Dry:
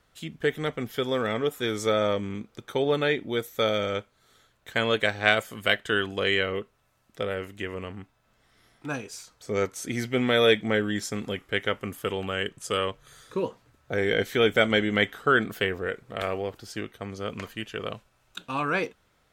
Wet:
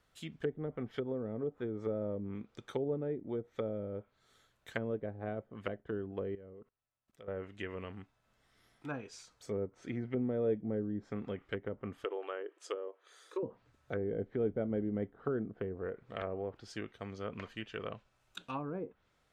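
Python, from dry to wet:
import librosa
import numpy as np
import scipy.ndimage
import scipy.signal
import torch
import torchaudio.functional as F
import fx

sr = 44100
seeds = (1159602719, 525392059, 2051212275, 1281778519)

y = fx.brickwall_highpass(x, sr, low_hz=300.0, at=(12.04, 13.43))
y = fx.env_lowpass_down(y, sr, base_hz=430.0, full_db=-23.5)
y = fx.level_steps(y, sr, step_db=22, at=(6.35, 7.28))
y = y * librosa.db_to_amplitude(-7.5)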